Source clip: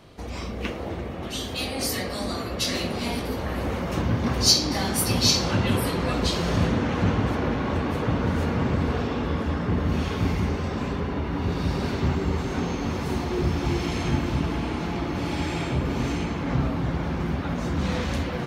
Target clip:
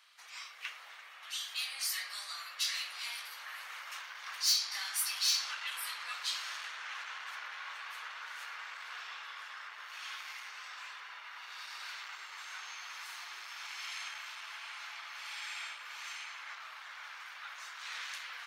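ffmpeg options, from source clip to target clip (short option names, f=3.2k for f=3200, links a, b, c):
-af "asoftclip=type=tanh:threshold=-18dB,highpass=f=1.3k:w=0.5412,highpass=f=1.3k:w=1.3066,volume=-5dB"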